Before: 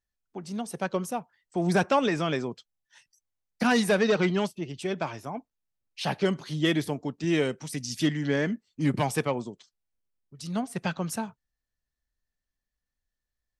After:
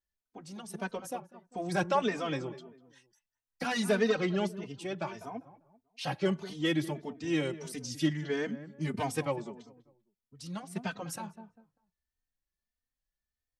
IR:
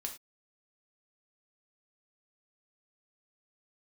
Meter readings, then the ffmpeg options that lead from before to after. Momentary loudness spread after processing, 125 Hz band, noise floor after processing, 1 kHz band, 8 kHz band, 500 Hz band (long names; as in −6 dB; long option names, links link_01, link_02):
16 LU, −6.5 dB, below −85 dBFS, −5.0 dB, −5.5 dB, −5.0 dB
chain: -filter_complex "[0:a]asplit=2[link_01][link_02];[link_02]adelay=198,lowpass=frequency=1400:poles=1,volume=-14dB,asplit=2[link_03][link_04];[link_04]adelay=198,lowpass=frequency=1400:poles=1,volume=0.34,asplit=2[link_05][link_06];[link_06]adelay=198,lowpass=frequency=1400:poles=1,volume=0.34[link_07];[link_03][link_05][link_07]amix=inputs=3:normalize=0[link_08];[link_01][link_08]amix=inputs=2:normalize=0,asplit=2[link_09][link_10];[link_10]adelay=3.1,afreqshift=1.6[link_11];[link_09][link_11]amix=inputs=2:normalize=1,volume=-2.5dB"